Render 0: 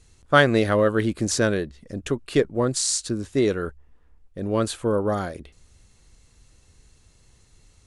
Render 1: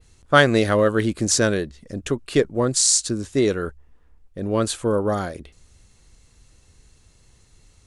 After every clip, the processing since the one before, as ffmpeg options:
ffmpeg -i in.wav -af "adynamicequalizer=threshold=0.01:dfrequency=7000:dqfactor=0.84:tfrequency=7000:tqfactor=0.84:attack=5:release=100:ratio=0.375:range=3:mode=boostabove:tftype=bell,volume=1.5dB" out.wav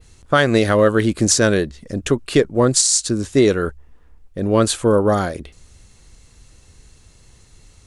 ffmpeg -i in.wav -af "alimiter=limit=-10dB:level=0:latency=1:release=247,volume=6dB" out.wav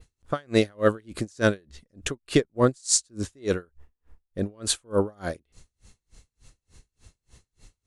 ffmpeg -i in.wav -af "aeval=exprs='val(0)*pow(10,-37*(0.5-0.5*cos(2*PI*3.4*n/s))/20)':channel_layout=same,volume=-2.5dB" out.wav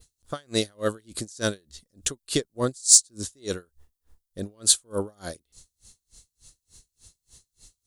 ffmpeg -i in.wav -af "aexciter=amount=4.4:drive=4.7:freq=3400,volume=-5.5dB" out.wav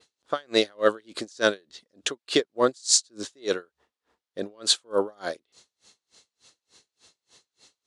ffmpeg -i in.wav -af "highpass=380,lowpass=3500,volume=7dB" out.wav

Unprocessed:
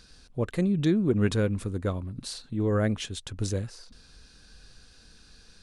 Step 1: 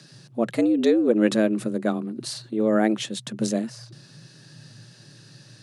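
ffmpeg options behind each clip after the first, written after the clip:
ffmpeg -i in.wav -af "afreqshift=110,volume=4.5dB" out.wav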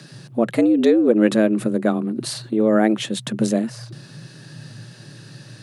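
ffmpeg -i in.wav -filter_complex "[0:a]equalizer=frequency=5600:width=0.97:gain=-6,asplit=2[link_01][link_02];[link_02]acompressor=threshold=-28dB:ratio=6,volume=2dB[link_03];[link_01][link_03]amix=inputs=2:normalize=0,volume=1.5dB" out.wav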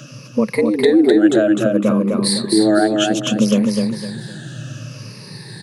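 ffmpeg -i in.wav -filter_complex "[0:a]afftfilt=real='re*pow(10,18/40*sin(2*PI*(0.88*log(max(b,1)*sr/1024/100)/log(2)-(-0.64)*(pts-256)/sr)))':imag='im*pow(10,18/40*sin(2*PI*(0.88*log(max(b,1)*sr/1024/100)/log(2)-(-0.64)*(pts-256)/sr)))':win_size=1024:overlap=0.75,alimiter=limit=-8dB:level=0:latency=1:release=265,asplit=2[link_01][link_02];[link_02]aecho=0:1:254|508|762|1016:0.668|0.214|0.0684|0.0219[link_03];[link_01][link_03]amix=inputs=2:normalize=0,volume=2.5dB" out.wav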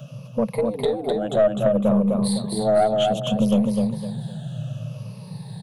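ffmpeg -i in.wav -af "firequalizer=gain_entry='entry(110,0);entry(180,4);entry(310,-24);entry(450,-5);entry(670,4);entry(1700,-19);entry(3300,-4);entry(5100,-19);entry(7500,-12);entry(13000,-2)':delay=0.05:min_phase=1,aeval=exprs='(tanh(2.51*val(0)+0.25)-tanh(0.25))/2.51':channel_layout=same" out.wav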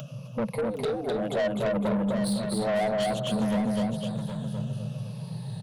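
ffmpeg -i in.wav -filter_complex "[0:a]acompressor=mode=upward:threshold=-36dB:ratio=2.5,asoftclip=type=tanh:threshold=-21.5dB,asplit=2[link_01][link_02];[link_02]aecho=0:1:769:0.398[link_03];[link_01][link_03]amix=inputs=2:normalize=0,volume=-2dB" out.wav

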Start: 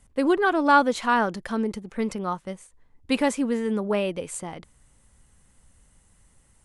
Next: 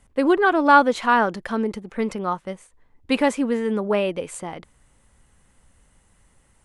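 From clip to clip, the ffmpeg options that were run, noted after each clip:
ffmpeg -i in.wav -af "bass=frequency=250:gain=-4,treble=frequency=4000:gain=-6,volume=4dB" out.wav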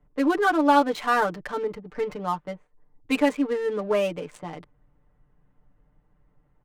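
ffmpeg -i in.wav -filter_complex "[0:a]aecho=1:1:6.7:0.93,acrossover=split=180[link_01][link_02];[link_02]adynamicsmooth=sensitivity=7:basefreq=1100[link_03];[link_01][link_03]amix=inputs=2:normalize=0,volume=-5.5dB" out.wav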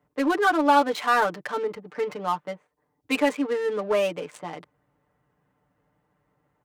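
ffmpeg -i in.wav -filter_complex "[0:a]highpass=frequency=61:width=0.5412,highpass=frequency=61:width=1.3066,lowshelf=frequency=220:gain=-11.5,asplit=2[link_01][link_02];[link_02]asoftclip=type=tanh:threshold=-24.5dB,volume=-7dB[link_03];[link_01][link_03]amix=inputs=2:normalize=0" out.wav

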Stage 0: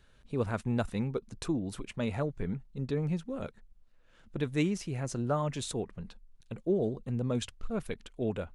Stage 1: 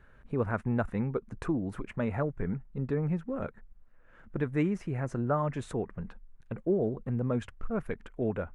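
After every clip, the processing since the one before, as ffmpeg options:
ffmpeg -i in.wav -filter_complex "[0:a]highshelf=frequency=2600:width_type=q:width=1.5:gain=-14,asplit=2[link_01][link_02];[link_02]acompressor=threshold=-38dB:ratio=6,volume=-1dB[link_03];[link_01][link_03]amix=inputs=2:normalize=0,volume=-1dB" out.wav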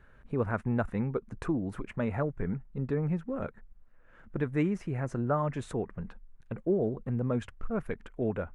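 ffmpeg -i in.wav -af anull out.wav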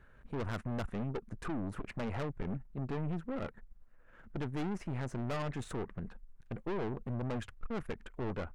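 ffmpeg -i in.wav -af "aeval=exprs='(tanh(63.1*val(0)+0.7)-tanh(0.7))/63.1':channel_layout=same,volume=2dB" out.wav

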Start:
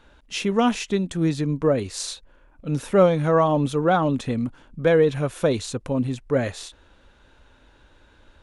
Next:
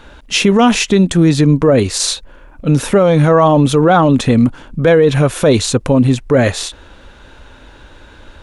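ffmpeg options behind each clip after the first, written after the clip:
ffmpeg -i in.wav -af "alimiter=level_in=16dB:limit=-1dB:release=50:level=0:latency=1,volume=-1dB" out.wav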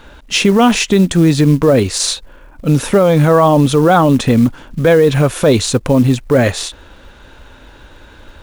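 ffmpeg -i in.wav -af "acrusher=bits=7:mode=log:mix=0:aa=0.000001" out.wav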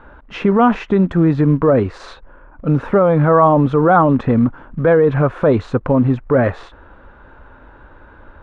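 ffmpeg -i in.wav -af "lowpass=frequency=1300:width_type=q:width=1.6,volume=-3.5dB" out.wav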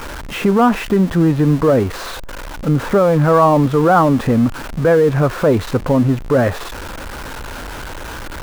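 ffmpeg -i in.wav -af "aeval=exprs='val(0)+0.5*0.0708*sgn(val(0))':channel_layout=same,acrusher=bits=10:mix=0:aa=0.000001,volume=-1dB" out.wav

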